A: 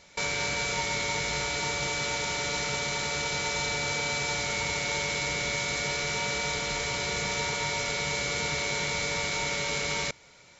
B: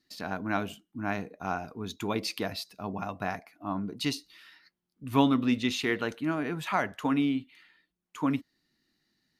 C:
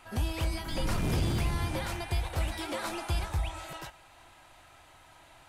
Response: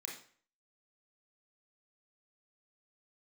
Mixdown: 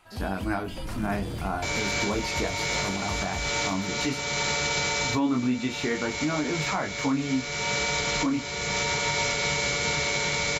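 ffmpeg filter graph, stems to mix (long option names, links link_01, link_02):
-filter_complex "[0:a]acontrast=48,adelay=1450,volume=2dB[link_01];[1:a]highshelf=frequency=2800:gain=-11,acontrast=35,flanger=delay=20:depth=5.6:speed=0.31,volume=3dB,asplit=2[link_02][link_03];[2:a]volume=-4.5dB[link_04];[link_03]apad=whole_len=531109[link_05];[link_01][link_05]sidechaincompress=threshold=-32dB:ratio=8:attack=37:release=678[link_06];[link_06][link_02][link_04]amix=inputs=3:normalize=0,alimiter=limit=-17dB:level=0:latency=1:release=194"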